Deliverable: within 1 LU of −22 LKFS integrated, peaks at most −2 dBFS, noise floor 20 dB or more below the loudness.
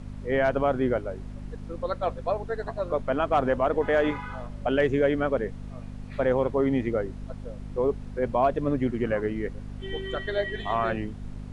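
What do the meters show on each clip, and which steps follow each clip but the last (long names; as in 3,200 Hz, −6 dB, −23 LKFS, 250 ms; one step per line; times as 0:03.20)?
mains hum 50 Hz; hum harmonics up to 250 Hz; level of the hum −36 dBFS; background noise floor −40 dBFS; target noise floor −47 dBFS; integrated loudness −27.0 LKFS; sample peak −11.5 dBFS; target loudness −22.0 LKFS
→ hum removal 50 Hz, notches 5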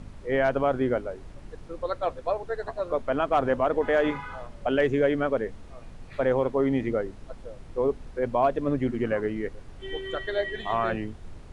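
mains hum none found; background noise floor −45 dBFS; target noise floor −48 dBFS
→ noise reduction from a noise print 6 dB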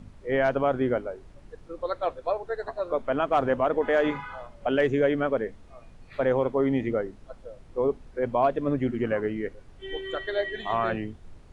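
background noise floor −51 dBFS; integrated loudness −27.0 LKFS; sample peak −11.5 dBFS; target loudness −22.0 LKFS
→ level +5 dB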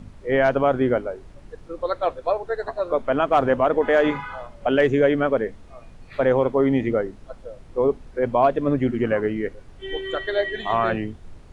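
integrated loudness −22.0 LKFS; sample peak −6.5 dBFS; background noise floor −46 dBFS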